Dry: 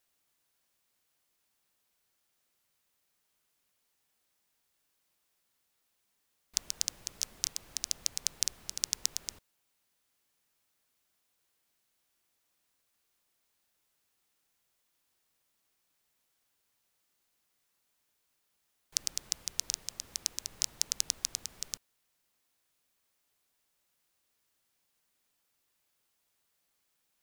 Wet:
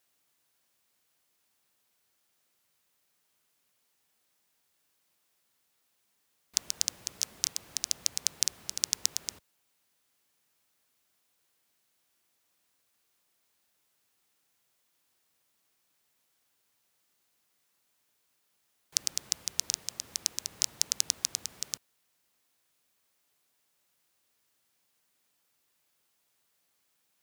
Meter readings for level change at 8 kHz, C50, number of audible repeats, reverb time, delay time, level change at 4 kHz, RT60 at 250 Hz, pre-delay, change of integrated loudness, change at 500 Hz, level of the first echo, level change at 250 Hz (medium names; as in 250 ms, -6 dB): +3.0 dB, no reverb, no echo, no reverb, no echo, +3.0 dB, no reverb, no reverb, +3.0 dB, +3.0 dB, no echo, +3.0 dB